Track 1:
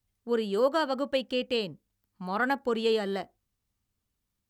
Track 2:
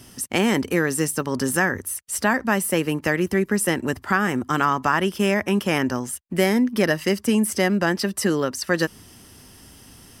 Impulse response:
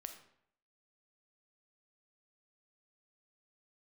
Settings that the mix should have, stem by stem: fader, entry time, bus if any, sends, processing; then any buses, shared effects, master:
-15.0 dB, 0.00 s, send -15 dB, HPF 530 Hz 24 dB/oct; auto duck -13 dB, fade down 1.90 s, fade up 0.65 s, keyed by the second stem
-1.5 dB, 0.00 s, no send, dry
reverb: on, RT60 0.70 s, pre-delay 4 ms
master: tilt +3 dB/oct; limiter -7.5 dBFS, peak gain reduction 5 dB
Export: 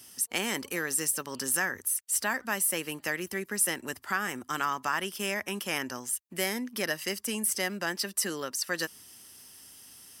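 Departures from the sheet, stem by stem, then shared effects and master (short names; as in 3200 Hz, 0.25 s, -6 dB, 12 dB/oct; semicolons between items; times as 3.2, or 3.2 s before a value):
stem 1 -15.0 dB -> -26.5 dB; stem 2 -1.5 dB -> -10.0 dB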